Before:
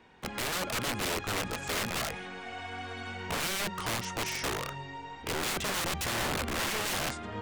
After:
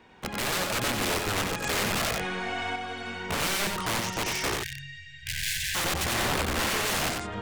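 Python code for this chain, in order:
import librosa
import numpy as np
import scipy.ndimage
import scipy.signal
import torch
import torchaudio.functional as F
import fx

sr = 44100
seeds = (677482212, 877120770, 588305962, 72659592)

p1 = fx.brickwall_bandstop(x, sr, low_hz=150.0, high_hz=1500.0, at=(4.54, 5.75))
p2 = p1 + fx.echo_single(p1, sr, ms=92, db=-4.0, dry=0)
p3 = fx.env_flatten(p2, sr, amount_pct=50, at=(1.64, 2.76))
y = p3 * 10.0 ** (3.0 / 20.0)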